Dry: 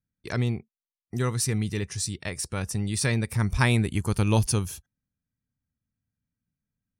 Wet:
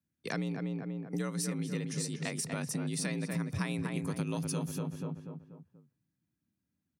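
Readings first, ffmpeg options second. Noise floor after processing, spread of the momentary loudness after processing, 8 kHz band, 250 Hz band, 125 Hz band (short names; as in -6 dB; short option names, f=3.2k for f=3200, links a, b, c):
-85 dBFS, 7 LU, -8.0 dB, -5.0 dB, -10.5 dB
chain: -filter_complex "[0:a]asplit=2[a][b];[b]adelay=242,lowpass=f=1.9k:p=1,volume=-5dB,asplit=2[c][d];[d]adelay=242,lowpass=f=1.9k:p=1,volume=0.43,asplit=2[e][f];[f]adelay=242,lowpass=f=1.9k:p=1,volume=0.43,asplit=2[g][h];[h]adelay=242,lowpass=f=1.9k:p=1,volume=0.43,asplit=2[i][j];[j]adelay=242,lowpass=f=1.9k:p=1,volume=0.43[k];[a][c][e][g][i][k]amix=inputs=6:normalize=0,afreqshift=55,acompressor=threshold=-32dB:ratio=6"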